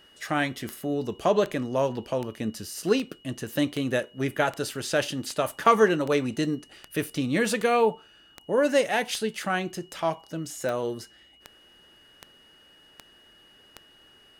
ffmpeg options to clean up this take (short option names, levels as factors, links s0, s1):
-af "adeclick=t=4,bandreject=f=2900:w=30"